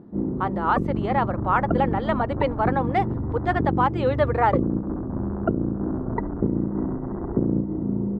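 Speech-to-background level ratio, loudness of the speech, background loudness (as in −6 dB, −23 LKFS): 1.5 dB, −25.0 LKFS, −26.5 LKFS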